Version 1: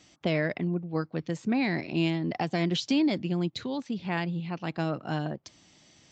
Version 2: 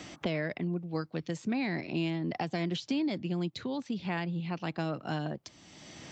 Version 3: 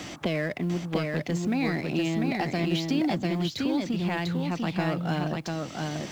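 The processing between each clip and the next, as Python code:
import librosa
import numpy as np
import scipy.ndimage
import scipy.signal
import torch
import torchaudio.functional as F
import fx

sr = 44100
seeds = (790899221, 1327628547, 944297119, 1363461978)

y1 = fx.band_squash(x, sr, depth_pct=70)
y1 = y1 * 10.0 ** (-4.5 / 20.0)
y2 = fx.law_mismatch(y1, sr, coded='mu')
y2 = y2 + 10.0 ** (-3.0 / 20.0) * np.pad(y2, (int(696 * sr / 1000.0), 0))[:len(y2)]
y2 = y2 * 10.0 ** (3.0 / 20.0)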